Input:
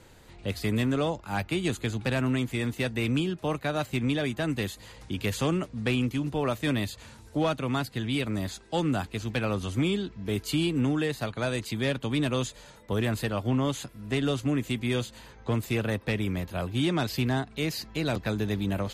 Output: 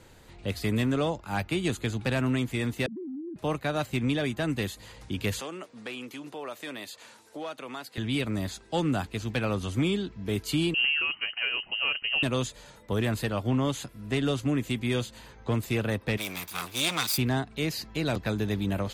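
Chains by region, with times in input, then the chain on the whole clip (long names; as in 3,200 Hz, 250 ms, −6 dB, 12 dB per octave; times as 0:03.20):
0:02.86–0:03.36: three sine waves on the formant tracks + inverse Chebyshev low-pass filter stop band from 2,400 Hz, stop band 60 dB + downward compressor 10 to 1, threshold −35 dBFS
0:05.40–0:07.98: high-pass filter 400 Hz + downward compressor 2 to 1, threshold −39 dBFS
0:10.74–0:12.23: high-frequency loss of the air 370 metres + voice inversion scrambler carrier 3,000 Hz
0:16.17–0:17.18: lower of the sound and its delayed copy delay 0.83 ms + spectral tilt +4 dB per octave
whole clip: no processing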